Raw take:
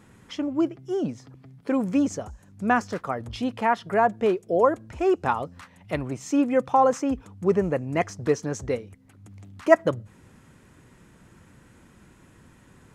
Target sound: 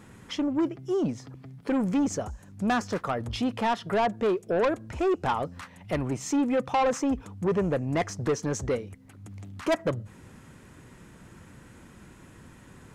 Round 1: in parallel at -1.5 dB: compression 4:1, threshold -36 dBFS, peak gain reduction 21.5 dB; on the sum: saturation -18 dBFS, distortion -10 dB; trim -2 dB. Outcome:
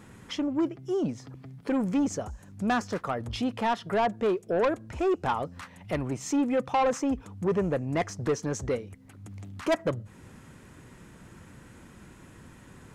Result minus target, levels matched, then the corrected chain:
compression: peak gain reduction +8 dB
in parallel at -1.5 dB: compression 4:1, threshold -25.5 dBFS, peak gain reduction 13.5 dB; on the sum: saturation -18 dBFS, distortion -10 dB; trim -2 dB

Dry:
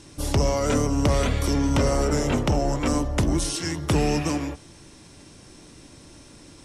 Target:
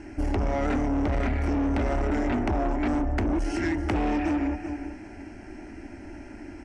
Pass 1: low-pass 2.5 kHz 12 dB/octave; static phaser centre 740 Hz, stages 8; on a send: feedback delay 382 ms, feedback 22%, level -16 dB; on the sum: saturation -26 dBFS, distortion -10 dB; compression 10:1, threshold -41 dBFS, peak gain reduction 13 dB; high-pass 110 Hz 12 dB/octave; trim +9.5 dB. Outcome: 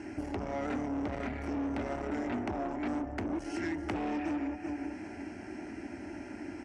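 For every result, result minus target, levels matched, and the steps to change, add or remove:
compression: peak gain reduction +7.5 dB; 125 Hz band -4.5 dB
change: compression 10:1, threshold -32.5 dBFS, peak gain reduction 5.5 dB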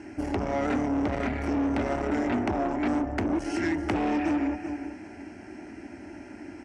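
125 Hz band -5.5 dB
remove: high-pass 110 Hz 12 dB/octave

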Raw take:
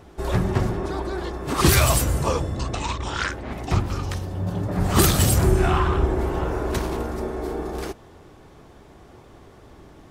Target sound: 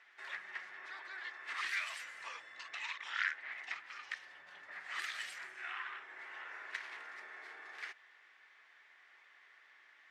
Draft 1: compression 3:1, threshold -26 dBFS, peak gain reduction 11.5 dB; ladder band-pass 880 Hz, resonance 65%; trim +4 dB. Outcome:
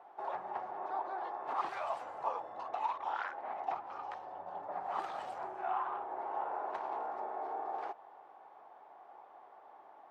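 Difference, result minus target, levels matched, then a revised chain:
2 kHz band -13.0 dB
compression 3:1, threshold -26 dBFS, peak gain reduction 11.5 dB; ladder band-pass 2.1 kHz, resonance 65%; trim +4 dB

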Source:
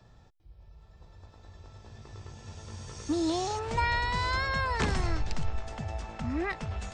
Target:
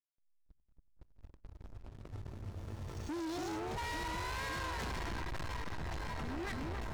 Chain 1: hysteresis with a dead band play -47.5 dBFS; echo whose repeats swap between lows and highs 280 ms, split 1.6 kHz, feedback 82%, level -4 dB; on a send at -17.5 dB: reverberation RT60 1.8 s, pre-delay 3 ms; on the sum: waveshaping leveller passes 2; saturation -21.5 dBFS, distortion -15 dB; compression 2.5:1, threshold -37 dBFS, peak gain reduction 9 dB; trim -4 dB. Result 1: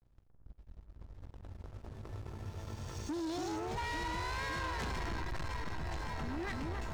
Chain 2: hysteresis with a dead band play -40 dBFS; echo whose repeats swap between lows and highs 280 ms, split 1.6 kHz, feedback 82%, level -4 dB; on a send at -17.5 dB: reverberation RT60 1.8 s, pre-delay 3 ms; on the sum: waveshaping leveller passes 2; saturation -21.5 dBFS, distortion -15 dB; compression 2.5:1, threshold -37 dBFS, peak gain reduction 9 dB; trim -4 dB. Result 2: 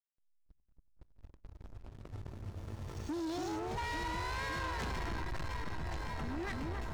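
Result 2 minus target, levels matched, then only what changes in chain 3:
saturation: distortion -6 dB
change: saturation -28.5 dBFS, distortion -9 dB

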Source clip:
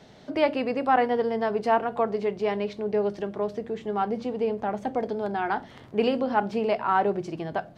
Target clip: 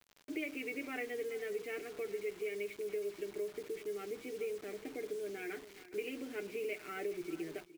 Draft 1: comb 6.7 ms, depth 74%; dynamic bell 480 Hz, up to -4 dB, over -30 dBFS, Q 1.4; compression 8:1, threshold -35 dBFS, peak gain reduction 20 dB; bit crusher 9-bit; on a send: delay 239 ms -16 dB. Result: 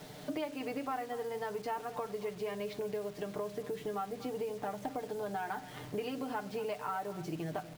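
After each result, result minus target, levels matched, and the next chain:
1 kHz band +12.0 dB; echo 177 ms early
comb 6.7 ms, depth 74%; dynamic bell 480 Hz, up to -4 dB, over -30 dBFS, Q 1.4; two resonant band-passes 920 Hz, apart 2.6 oct; compression 8:1, threshold -35 dBFS, peak gain reduction 8.5 dB; bit crusher 9-bit; on a send: delay 239 ms -16 dB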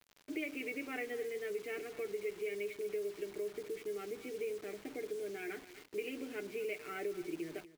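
echo 177 ms early
comb 6.7 ms, depth 74%; dynamic bell 480 Hz, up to -4 dB, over -30 dBFS, Q 1.4; two resonant band-passes 920 Hz, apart 2.6 oct; compression 8:1, threshold -35 dBFS, peak gain reduction 8.5 dB; bit crusher 9-bit; on a send: delay 416 ms -16 dB

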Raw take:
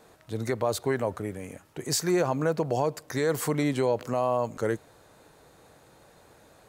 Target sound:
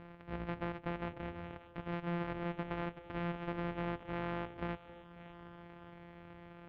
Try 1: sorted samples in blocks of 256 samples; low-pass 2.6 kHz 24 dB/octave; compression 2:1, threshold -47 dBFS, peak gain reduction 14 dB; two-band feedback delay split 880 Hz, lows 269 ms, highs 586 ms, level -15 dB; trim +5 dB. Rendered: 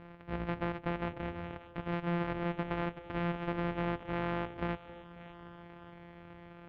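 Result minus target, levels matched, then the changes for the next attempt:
compression: peak gain reduction -4 dB
change: compression 2:1, threshold -55.5 dBFS, peak gain reduction 18.5 dB

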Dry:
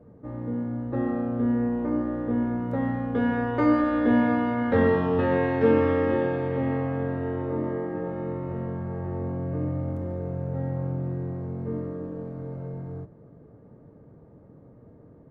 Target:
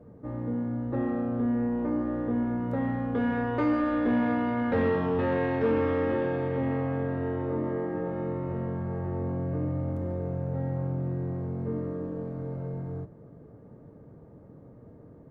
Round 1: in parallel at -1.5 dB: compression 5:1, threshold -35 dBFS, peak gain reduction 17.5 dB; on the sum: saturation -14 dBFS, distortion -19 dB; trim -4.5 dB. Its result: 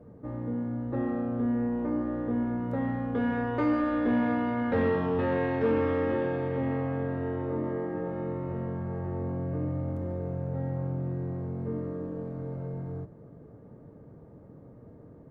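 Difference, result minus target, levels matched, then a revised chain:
compression: peak gain reduction +5 dB
in parallel at -1.5 dB: compression 5:1, threshold -28.5 dBFS, peak gain reduction 12.5 dB; on the sum: saturation -14 dBFS, distortion -18 dB; trim -4.5 dB

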